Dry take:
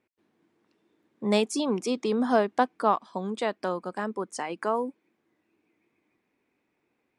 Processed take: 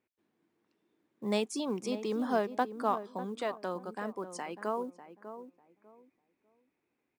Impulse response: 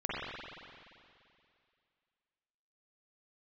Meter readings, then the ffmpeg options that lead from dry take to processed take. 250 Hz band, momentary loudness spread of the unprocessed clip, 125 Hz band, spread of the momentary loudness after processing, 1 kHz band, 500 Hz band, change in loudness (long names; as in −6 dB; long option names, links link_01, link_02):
−6.5 dB, 10 LU, −6.5 dB, 15 LU, −7.0 dB, −6.5 dB, −6.5 dB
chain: -filter_complex "[0:a]asplit=2[link_01][link_02];[link_02]adelay=597,lowpass=frequency=990:poles=1,volume=-10dB,asplit=2[link_03][link_04];[link_04]adelay=597,lowpass=frequency=990:poles=1,volume=0.25,asplit=2[link_05][link_06];[link_06]adelay=597,lowpass=frequency=990:poles=1,volume=0.25[link_07];[link_01][link_03][link_05][link_07]amix=inputs=4:normalize=0,acrusher=bits=9:mode=log:mix=0:aa=0.000001,volume=-7dB"